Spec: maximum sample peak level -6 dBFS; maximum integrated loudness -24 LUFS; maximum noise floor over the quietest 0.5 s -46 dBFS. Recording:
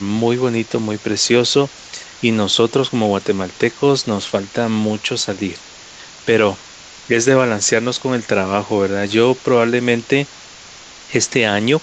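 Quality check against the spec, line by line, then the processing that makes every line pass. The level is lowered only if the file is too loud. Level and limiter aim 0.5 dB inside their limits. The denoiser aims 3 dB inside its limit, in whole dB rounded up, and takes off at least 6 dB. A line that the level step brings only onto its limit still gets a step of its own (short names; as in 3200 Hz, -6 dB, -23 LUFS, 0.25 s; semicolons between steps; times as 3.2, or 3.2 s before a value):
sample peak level -1.5 dBFS: fail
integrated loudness -17.0 LUFS: fail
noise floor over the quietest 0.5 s -39 dBFS: fail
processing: gain -7.5 dB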